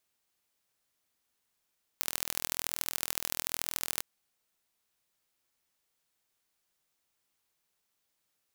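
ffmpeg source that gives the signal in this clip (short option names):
-f lavfi -i "aevalsrc='0.75*eq(mod(n,1073),0)*(0.5+0.5*eq(mod(n,3219),0))':d=2.01:s=44100"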